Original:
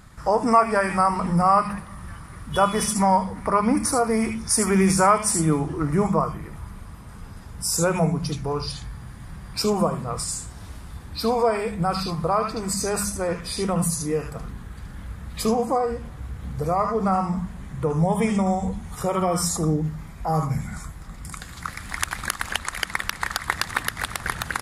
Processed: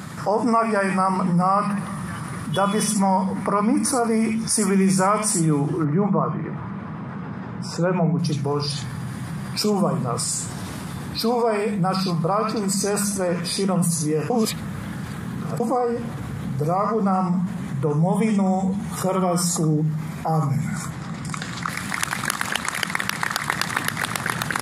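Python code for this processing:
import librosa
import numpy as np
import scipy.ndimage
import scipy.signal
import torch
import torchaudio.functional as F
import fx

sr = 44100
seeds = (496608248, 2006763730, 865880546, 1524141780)

y = fx.bandpass_edges(x, sr, low_hz=110.0, high_hz=2100.0, at=(5.84, 8.19))
y = fx.lowpass(y, sr, hz=6900.0, slope=12, at=(20.9, 21.69))
y = fx.edit(y, sr, fx.reverse_span(start_s=14.3, length_s=1.3), tone=tone)
y = scipy.signal.sosfilt(scipy.signal.butter(4, 140.0, 'highpass', fs=sr, output='sos'), y)
y = fx.low_shelf(y, sr, hz=200.0, db=9.5)
y = fx.env_flatten(y, sr, amount_pct=50)
y = y * librosa.db_to_amplitude(-4.5)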